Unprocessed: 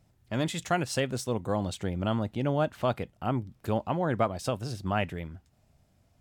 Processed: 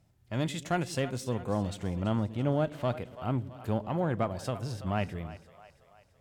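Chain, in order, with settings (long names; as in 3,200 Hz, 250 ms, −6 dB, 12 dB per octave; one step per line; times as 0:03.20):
harmonic generator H 4 −26 dB, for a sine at −13.5 dBFS
echo with a time of its own for lows and highs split 470 Hz, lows 115 ms, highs 332 ms, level −16 dB
harmonic and percussive parts rebalanced percussive −6 dB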